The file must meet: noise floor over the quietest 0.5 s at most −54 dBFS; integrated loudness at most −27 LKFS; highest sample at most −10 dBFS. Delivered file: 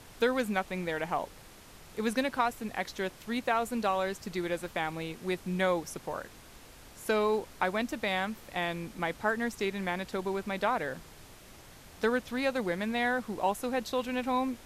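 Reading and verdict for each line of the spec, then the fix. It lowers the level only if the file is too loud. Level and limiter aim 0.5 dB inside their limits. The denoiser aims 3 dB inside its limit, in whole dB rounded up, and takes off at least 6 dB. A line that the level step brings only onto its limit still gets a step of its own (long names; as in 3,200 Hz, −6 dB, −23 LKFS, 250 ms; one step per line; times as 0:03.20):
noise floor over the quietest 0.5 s −52 dBFS: out of spec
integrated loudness −32.0 LKFS: in spec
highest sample −13.0 dBFS: in spec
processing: broadband denoise 6 dB, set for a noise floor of −52 dBFS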